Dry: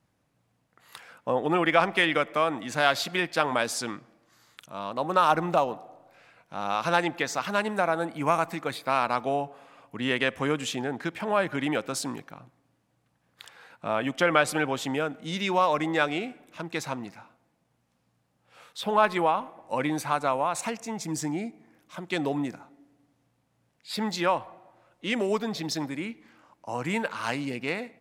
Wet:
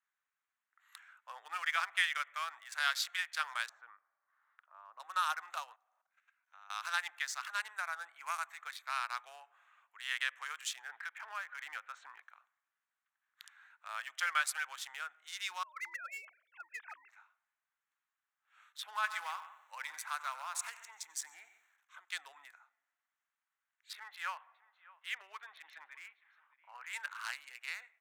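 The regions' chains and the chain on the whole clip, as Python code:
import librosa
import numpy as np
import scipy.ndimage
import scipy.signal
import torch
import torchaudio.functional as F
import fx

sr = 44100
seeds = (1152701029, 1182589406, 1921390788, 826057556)

y = fx.chain(x, sr, fx.lowpass(hz=1000.0, slope=12),
    fx.band_squash(depth_pct=40), at=(3.69, 5.0))
y = fx.chain(y, sr, fx.level_steps(step_db=14),
    fx.peak_eq(hz=6300.0, db=5.5, octaves=0.22), at=(5.73, 6.77))
y = fx.chain(y, sr, fx.lowpass(hz=2500.0, slope=12),
    fx.band_squash(depth_pct=70), at=(10.89, 12.23))
y = fx.chain(y, sr, fx.sine_speech(),
    fx.over_compress(threshold_db=-29.0, ratio=-0.5), at=(15.63, 17.09))
y = fx.chain(y, sr, fx.echo_single(ms=136, db=-13.0),
    fx.echo_crushed(ms=92, feedback_pct=55, bits=8, wet_db=-13.5), at=(18.84, 22.0))
y = fx.chain(y, sr, fx.lowpass(hz=3300.0, slope=24),
    fx.echo_single(ms=612, db=-20.0), at=(23.93, 26.93))
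y = fx.wiener(y, sr, points=9)
y = scipy.signal.sosfilt(scipy.signal.butter(4, 1500.0, 'highpass', fs=sr, output='sos'), y)
y = fx.peak_eq(y, sr, hz=2600.0, db=-9.0, octaves=1.2)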